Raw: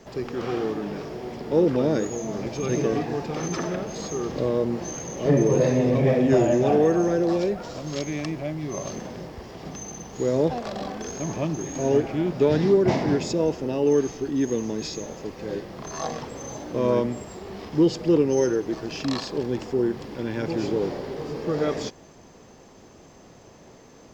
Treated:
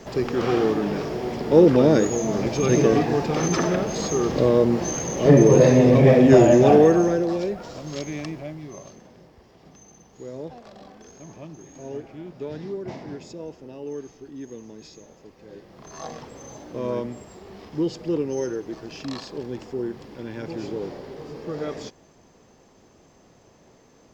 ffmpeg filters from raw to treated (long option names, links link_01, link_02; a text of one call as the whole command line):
ffmpeg -i in.wav -af "volume=14dB,afade=type=out:start_time=6.72:duration=0.57:silence=0.398107,afade=type=out:start_time=8.2:duration=0.75:silence=0.266073,afade=type=in:start_time=15.51:duration=0.58:silence=0.398107" out.wav